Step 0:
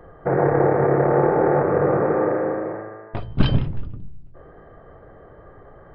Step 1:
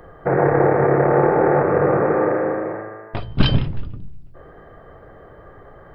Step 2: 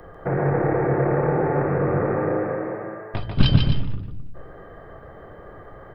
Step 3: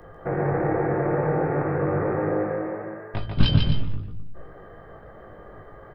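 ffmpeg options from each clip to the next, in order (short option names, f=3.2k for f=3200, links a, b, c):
-af "highshelf=f=2.4k:g=9.5,volume=1.5dB"
-filter_complex "[0:a]acrossover=split=230|3000[a][b][c];[b]acompressor=threshold=-38dB:ratio=1.5[d];[a][d][c]amix=inputs=3:normalize=0,asplit=2[e][f];[f]aecho=0:1:145|261:0.562|0.266[g];[e][g]amix=inputs=2:normalize=0"
-filter_complex "[0:a]asplit=2[a][b];[b]adelay=19,volume=-5dB[c];[a][c]amix=inputs=2:normalize=0,volume=-3.5dB"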